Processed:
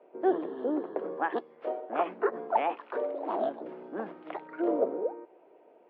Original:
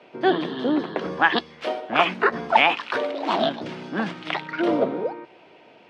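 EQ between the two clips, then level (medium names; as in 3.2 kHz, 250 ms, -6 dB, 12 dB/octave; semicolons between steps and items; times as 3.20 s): ladder band-pass 520 Hz, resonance 30%; +4.5 dB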